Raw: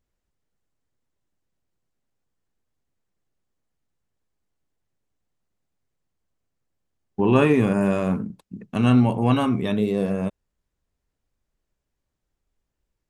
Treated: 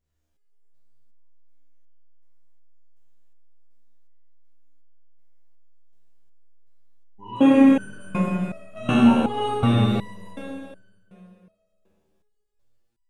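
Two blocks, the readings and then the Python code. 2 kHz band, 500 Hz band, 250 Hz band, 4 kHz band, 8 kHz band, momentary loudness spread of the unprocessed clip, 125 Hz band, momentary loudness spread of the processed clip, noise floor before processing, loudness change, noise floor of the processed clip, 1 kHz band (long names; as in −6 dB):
−1.0 dB, −3.5 dB, +2.5 dB, +3.0 dB, can't be measured, 13 LU, −2.5 dB, 21 LU, −81 dBFS, +1.0 dB, −70 dBFS, +1.5 dB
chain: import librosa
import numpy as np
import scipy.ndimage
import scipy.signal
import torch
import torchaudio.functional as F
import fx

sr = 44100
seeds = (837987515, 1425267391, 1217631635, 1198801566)

y = fx.rev_schroeder(x, sr, rt60_s=2.3, comb_ms=26, drr_db=-6.0)
y = fx.resonator_held(y, sr, hz=2.7, low_hz=76.0, high_hz=1500.0)
y = y * 10.0 ** (6.0 / 20.0)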